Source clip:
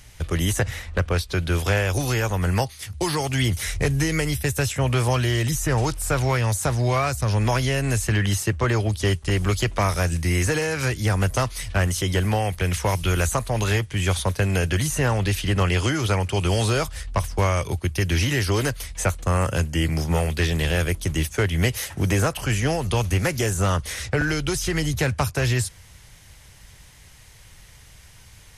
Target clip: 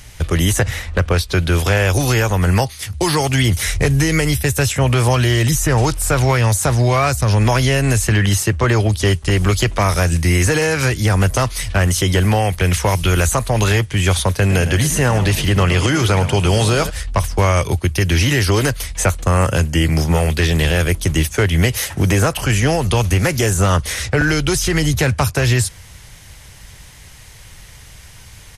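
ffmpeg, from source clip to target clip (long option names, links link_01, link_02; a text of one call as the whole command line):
ffmpeg -i in.wav -filter_complex "[0:a]asplit=3[link_01][link_02][link_03];[link_01]afade=type=out:start_time=14.49:duration=0.02[link_04];[link_02]asplit=5[link_05][link_06][link_07][link_08][link_09];[link_06]adelay=107,afreqshift=44,volume=-13.5dB[link_10];[link_07]adelay=214,afreqshift=88,volume=-21.2dB[link_11];[link_08]adelay=321,afreqshift=132,volume=-29dB[link_12];[link_09]adelay=428,afreqshift=176,volume=-36.7dB[link_13];[link_05][link_10][link_11][link_12][link_13]amix=inputs=5:normalize=0,afade=type=in:start_time=14.49:duration=0.02,afade=type=out:start_time=16.89:duration=0.02[link_14];[link_03]afade=type=in:start_time=16.89:duration=0.02[link_15];[link_04][link_14][link_15]amix=inputs=3:normalize=0,alimiter=level_in=13.5dB:limit=-1dB:release=50:level=0:latency=1,volume=-5.5dB" out.wav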